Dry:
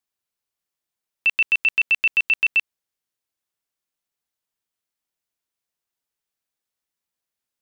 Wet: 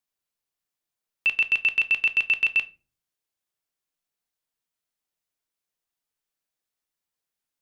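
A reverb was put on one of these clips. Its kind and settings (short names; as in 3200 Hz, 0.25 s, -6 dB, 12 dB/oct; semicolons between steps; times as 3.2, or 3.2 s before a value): shoebox room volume 190 m³, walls furnished, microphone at 0.47 m; gain -2 dB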